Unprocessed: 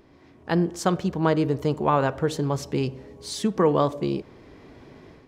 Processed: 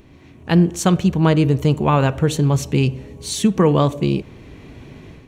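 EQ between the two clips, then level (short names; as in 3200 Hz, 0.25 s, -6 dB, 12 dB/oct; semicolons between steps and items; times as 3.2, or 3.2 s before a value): tone controls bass +10 dB, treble +8 dB; bell 2600 Hz +8 dB 0.59 oct; notch 5000 Hz, Q 5.6; +2.5 dB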